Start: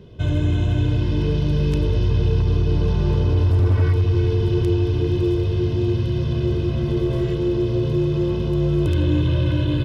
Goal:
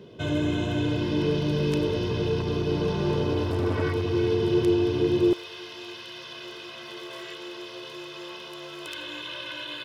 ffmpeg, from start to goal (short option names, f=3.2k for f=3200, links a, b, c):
-af "asetnsamples=n=441:p=0,asendcmd='5.33 highpass f 1200',highpass=220,volume=1.5dB"